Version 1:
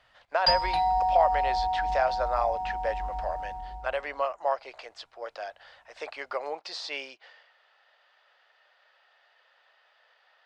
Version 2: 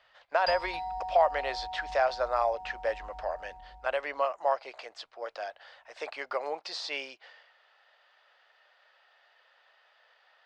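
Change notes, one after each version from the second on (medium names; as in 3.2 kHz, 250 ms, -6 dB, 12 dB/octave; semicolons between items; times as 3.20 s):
background -11.5 dB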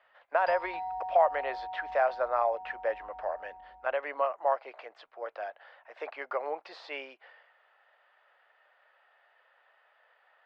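master: add three-band isolator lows -14 dB, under 210 Hz, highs -23 dB, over 2.7 kHz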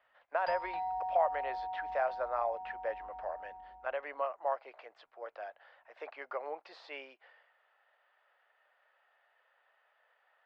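speech -6.0 dB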